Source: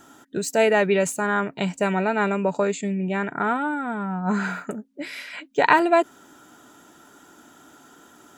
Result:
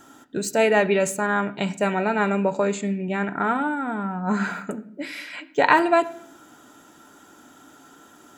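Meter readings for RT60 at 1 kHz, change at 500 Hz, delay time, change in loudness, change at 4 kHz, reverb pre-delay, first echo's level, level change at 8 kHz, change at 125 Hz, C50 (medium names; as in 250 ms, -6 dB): 0.55 s, 0.0 dB, no echo, 0.0 dB, 0.0 dB, 4 ms, no echo, 0.0 dB, -0.5 dB, 16.5 dB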